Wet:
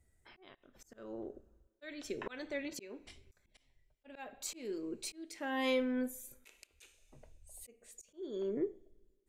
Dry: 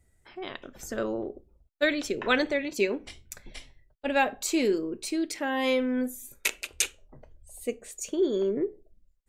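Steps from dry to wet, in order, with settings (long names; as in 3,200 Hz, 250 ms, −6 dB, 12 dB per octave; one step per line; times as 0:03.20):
coupled-rooms reverb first 0.44 s, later 1.6 s, from −18 dB, DRR 15.5 dB
volume swells 479 ms
level −6.5 dB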